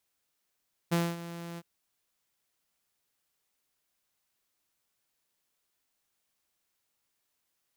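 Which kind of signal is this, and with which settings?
ADSR saw 170 Hz, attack 19 ms, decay 0.23 s, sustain -15.5 dB, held 0.67 s, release 42 ms -21 dBFS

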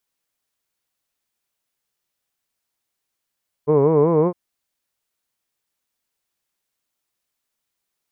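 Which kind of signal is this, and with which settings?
formant-synthesis vowel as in hood, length 0.66 s, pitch 142 Hz, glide +3 st, vibrato depth 1.3 st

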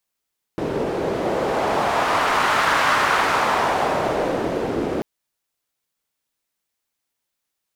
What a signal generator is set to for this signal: wind-like swept noise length 4.44 s, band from 380 Hz, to 1300 Hz, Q 1.5, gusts 1, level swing 5.5 dB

